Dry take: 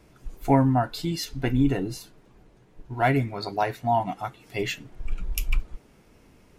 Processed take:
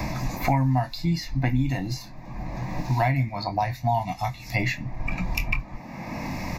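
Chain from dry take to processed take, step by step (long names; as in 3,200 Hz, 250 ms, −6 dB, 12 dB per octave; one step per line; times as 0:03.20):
phaser with its sweep stopped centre 2,100 Hz, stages 8
double-tracking delay 23 ms −9 dB
multiband upward and downward compressor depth 100%
level +2.5 dB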